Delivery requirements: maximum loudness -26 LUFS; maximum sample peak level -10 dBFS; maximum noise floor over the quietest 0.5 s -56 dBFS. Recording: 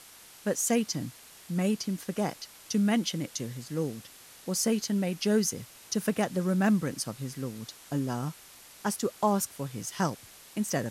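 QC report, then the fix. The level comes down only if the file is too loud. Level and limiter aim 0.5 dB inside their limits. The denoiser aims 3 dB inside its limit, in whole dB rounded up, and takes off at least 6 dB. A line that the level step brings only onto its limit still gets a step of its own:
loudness -30.5 LUFS: OK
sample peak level -14.5 dBFS: OK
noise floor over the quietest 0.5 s -52 dBFS: fail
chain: denoiser 7 dB, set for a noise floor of -52 dBFS

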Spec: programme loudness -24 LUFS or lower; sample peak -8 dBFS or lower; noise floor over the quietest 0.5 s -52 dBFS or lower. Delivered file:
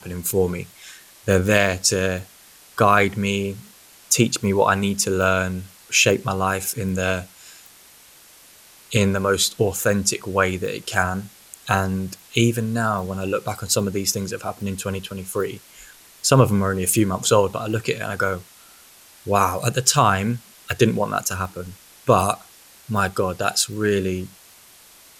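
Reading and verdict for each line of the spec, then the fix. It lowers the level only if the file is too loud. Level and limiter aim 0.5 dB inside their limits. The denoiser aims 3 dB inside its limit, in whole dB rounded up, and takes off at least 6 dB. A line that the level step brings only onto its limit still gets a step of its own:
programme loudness -21.0 LUFS: fail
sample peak -3.0 dBFS: fail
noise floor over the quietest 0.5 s -49 dBFS: fail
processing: gain -3.5 dB; limiter -8.5 dBFS

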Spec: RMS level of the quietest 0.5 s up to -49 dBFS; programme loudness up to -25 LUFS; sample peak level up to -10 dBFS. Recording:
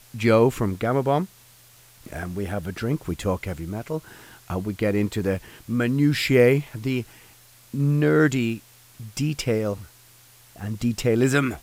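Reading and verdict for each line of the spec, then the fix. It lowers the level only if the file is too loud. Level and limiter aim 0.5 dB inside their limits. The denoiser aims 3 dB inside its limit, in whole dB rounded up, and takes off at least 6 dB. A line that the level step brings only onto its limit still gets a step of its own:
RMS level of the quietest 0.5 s -52 dBFS: OK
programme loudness -23.5 LUFS: fail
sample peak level -6.0 dBFS: fail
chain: gain -2 dB; limiter -10.5 dBFS

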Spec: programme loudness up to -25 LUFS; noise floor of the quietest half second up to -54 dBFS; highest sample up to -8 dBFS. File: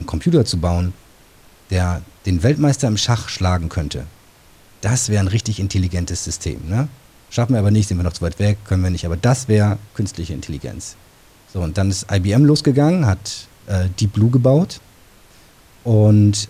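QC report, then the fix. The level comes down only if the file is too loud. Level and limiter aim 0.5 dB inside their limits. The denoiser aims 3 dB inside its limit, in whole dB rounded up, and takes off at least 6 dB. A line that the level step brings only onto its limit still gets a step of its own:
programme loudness -18.0 LUFS: fail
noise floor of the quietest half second -48 dBFS: fail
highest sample -4.0 dBFS: fail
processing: gain -7.5 dB

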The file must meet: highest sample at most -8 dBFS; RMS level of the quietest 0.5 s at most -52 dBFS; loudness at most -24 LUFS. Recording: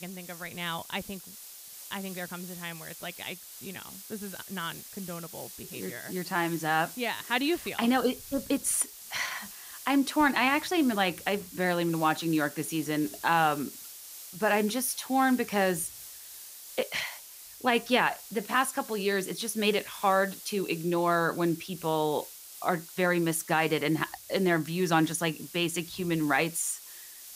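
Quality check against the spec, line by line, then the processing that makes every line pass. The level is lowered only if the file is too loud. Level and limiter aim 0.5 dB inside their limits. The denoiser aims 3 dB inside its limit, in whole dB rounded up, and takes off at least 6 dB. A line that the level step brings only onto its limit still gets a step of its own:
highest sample -10.5 dBFS: OK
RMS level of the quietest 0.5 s -47 dBFS: fail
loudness -29.0 LUFS: OK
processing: denoiser 8 dB, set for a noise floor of -47 dBFS

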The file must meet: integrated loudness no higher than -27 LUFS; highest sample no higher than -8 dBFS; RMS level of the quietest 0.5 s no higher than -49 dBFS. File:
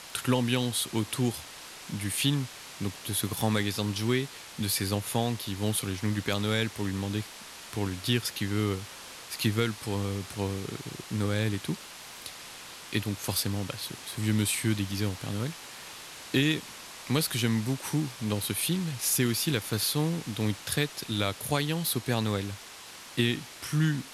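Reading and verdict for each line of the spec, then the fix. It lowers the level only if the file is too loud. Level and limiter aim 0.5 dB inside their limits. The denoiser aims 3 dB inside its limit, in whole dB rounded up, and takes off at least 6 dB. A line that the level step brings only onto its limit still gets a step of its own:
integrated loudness -30.0 LUFS: OK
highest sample -12.0 dBFS: OK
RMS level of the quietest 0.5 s -46 dBFS: fail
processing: denoiser 6 dB, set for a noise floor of -46 dBFS

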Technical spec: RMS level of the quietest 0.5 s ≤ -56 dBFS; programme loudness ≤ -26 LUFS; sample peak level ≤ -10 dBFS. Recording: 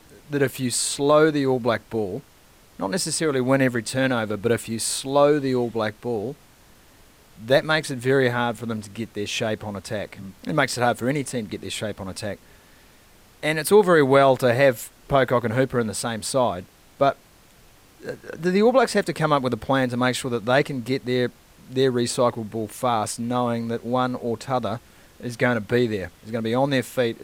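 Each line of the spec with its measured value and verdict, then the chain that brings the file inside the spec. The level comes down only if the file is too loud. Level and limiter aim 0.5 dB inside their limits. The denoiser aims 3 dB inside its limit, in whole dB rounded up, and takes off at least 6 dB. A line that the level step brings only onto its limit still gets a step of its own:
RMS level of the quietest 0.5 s -53 dBFS: fail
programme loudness -22.5 LUFS: fail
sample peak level -6.0 dBFS: fail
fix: gain -4 dB; limiter -10.5 dBFS

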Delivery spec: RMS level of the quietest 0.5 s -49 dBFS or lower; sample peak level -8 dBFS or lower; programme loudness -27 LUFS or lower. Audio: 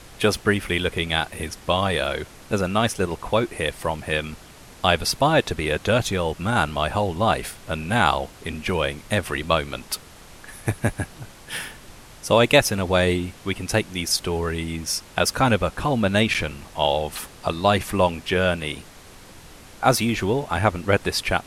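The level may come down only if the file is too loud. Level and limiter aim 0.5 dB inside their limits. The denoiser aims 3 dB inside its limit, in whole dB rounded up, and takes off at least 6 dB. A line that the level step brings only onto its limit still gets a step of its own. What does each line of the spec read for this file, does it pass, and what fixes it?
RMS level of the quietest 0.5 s -45 dBFS: fail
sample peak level -2.5 dBFS: fail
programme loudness -23.0 LUFS: fail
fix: gain -4.5 dB; limiter -8.5 dBFS

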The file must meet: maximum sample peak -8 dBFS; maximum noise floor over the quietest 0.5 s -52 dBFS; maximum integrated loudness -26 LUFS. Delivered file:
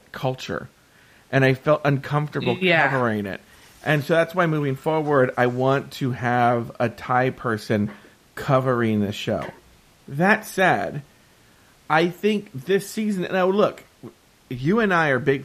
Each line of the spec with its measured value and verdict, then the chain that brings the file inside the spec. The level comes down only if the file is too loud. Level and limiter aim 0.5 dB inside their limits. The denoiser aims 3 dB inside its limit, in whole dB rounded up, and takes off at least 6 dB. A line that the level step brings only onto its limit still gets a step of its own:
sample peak -4.0 dBFS: fail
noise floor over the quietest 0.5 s -54 dBFS: OK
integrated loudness -22.0 LUFS: fail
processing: gain -4.5 dB

